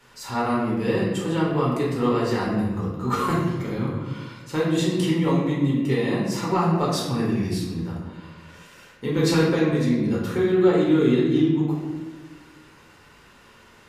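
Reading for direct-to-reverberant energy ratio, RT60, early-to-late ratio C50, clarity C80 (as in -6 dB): -6.0 dB, 1.3 s, 1.0 dB, 3.5 dB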